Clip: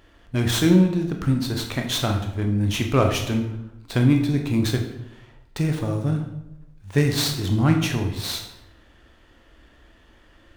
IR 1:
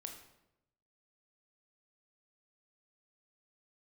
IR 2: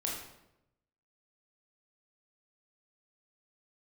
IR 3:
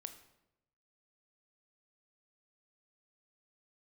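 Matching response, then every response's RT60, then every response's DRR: 1; 0.90 s, 0.90 s, 0.90 s; 3.0 dB, -3.0 dB, 8.0 dB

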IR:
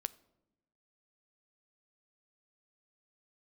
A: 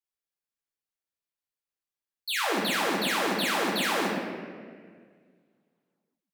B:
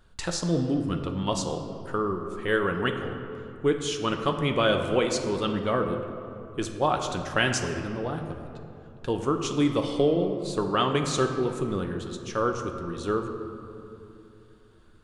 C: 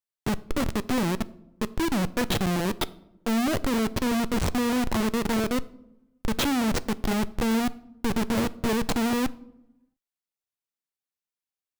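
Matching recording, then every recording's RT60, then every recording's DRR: C; 1.8 s, 2.9 s, 0.95 s; -6.0 dB, 4.0 dB, 15.5 dB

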